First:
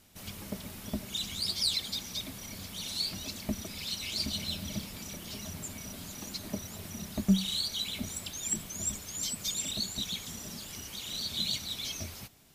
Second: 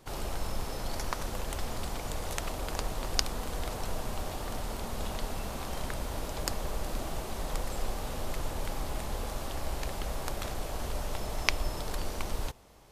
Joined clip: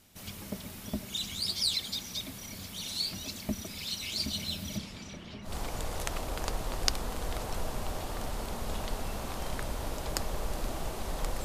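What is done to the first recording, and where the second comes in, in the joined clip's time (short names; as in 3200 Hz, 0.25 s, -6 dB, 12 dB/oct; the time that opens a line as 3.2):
first
4.77–5.56 LPF 8300 Hz -> 1600 Hz
5.49 switch to second from 1.8 s, crossfade 0.14 s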